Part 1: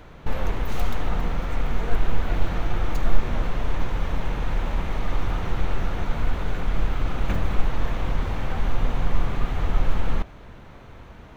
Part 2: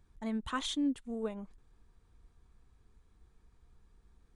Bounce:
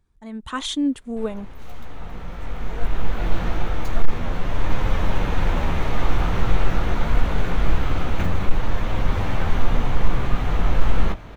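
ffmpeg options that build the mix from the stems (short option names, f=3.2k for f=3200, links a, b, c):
-filter_complex "[0:a]flanger=delay=9.5:depth=9.3:regen=-21:speed=0.25:shape=sinusoidal,adelay=900,volume=-3dB[a];[1:a]volume=-2.5dB,asplit=2[b][c];[c]apad=whole_len=540966[d];[a][d]sidechaincompress=threshold=-59dB:ratio=4:attack=22:release=1440[e];[e][b]amix=inputs=2:normalize=0,dynaudnorm=f=140:g=7:m=12.5dB,volume=4dB,asoftclip=hard,volume=-4dB"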